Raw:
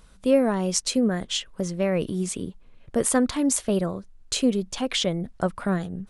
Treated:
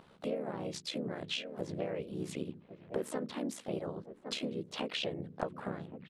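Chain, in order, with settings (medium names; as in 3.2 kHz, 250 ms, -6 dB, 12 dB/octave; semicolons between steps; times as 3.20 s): fade out at the end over 0.54 s; high-pass 160 Hz 12 dB/octave; peaking EQ 560 Hz +4.5 dB 1.5 oct; hum notches 60/120/180/240/300/360/420/480 Hz; echo from a far wall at 190 m, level -23 dB; compression 8:1, threshold -34 dBFS, peak gain reduction 22.5 dB; AM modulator 71 Hz, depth 70%; resonant high shelf 5.1 kHz -7.5 dB, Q 1.5; harmony voices -3 st -1 dB, +3 st -8 dB; tape noise reduction on one side only decoder only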